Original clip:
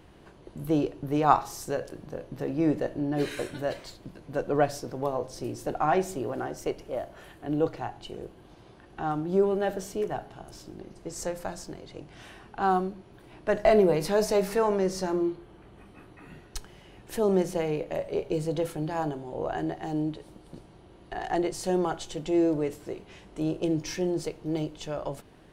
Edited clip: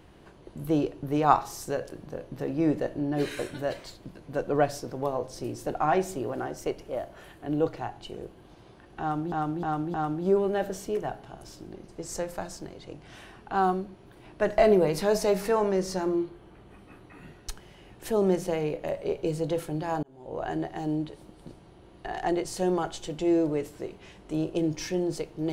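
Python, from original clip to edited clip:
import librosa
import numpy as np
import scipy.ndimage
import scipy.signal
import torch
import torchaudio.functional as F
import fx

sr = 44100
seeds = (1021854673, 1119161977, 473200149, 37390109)

y = fx.edit(x, sr, fx.repeat(start_s=9.01, length_s=0.31, count=4),
    fx.fade_in_span(start_s=19.1, length_s=0.47), tone=tone)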